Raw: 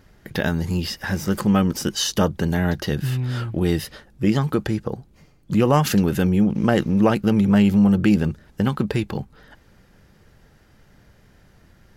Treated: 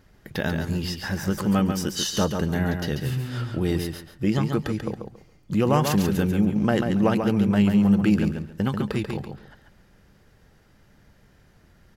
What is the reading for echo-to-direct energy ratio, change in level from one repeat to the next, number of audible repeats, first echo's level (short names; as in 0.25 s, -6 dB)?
-6.0 dB, -13.0 dB, 3, -6.0 dB